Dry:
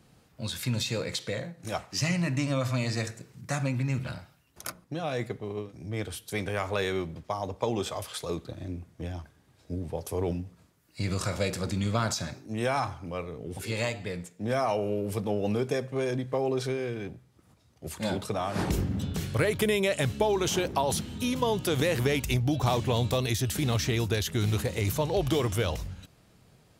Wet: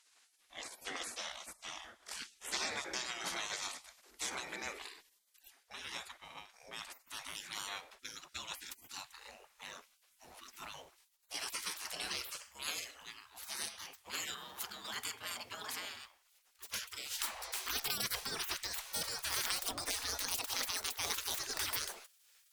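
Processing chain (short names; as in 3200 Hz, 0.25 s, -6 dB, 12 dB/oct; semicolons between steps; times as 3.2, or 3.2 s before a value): speed glide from 75% -> 163%; spectral gate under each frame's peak -25 dB weak; crackling interface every 0.50 s, samples 512, repeat, from 0.82; gain +3.5 dB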